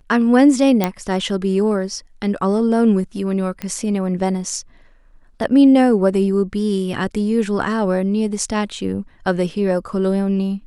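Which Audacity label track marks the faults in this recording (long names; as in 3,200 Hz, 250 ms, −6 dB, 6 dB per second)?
0.840000	0.840000	click −3 dBFS
3.620000	3.620000	click −12 dBFS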